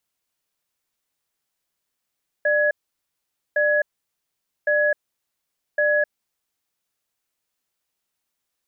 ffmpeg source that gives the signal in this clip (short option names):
-f lavfi -i "aevalsrc='0.112*(sin(2*PI*596*t)+sin(2*PI*1680*t))*clip(min(mod(t,1.11),0.26-mod(t,1.11))/0.005,0,1)':d=4.32:s=44100"